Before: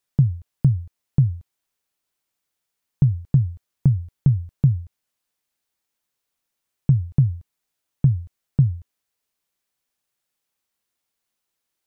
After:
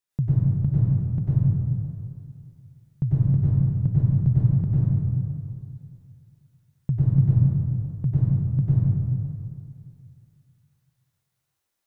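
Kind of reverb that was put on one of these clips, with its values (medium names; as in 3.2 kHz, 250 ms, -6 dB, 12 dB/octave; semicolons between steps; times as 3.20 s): plate-style reverb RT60 2.4 s, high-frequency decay 0.55×, pre-delay 85 ms, DRR -10 dB; trim -8.5 dB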